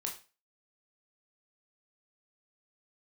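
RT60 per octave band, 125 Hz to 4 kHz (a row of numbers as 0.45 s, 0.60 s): 0.30 s, 0.35 s, 0.35 s, 0.35 s, 0.30 s, 0.30 s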